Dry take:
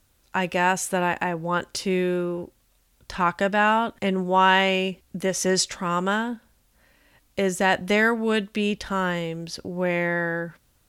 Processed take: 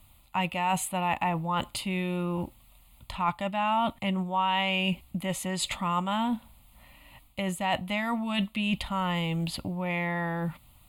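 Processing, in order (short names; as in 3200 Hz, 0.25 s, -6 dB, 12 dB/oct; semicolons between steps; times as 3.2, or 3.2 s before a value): reverse; compressor 12:1, threshold -29 dBFS, peak gain reduction 16 dB; reverse; fixed phaser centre 1600 Hz, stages 6; gain +8.5 dB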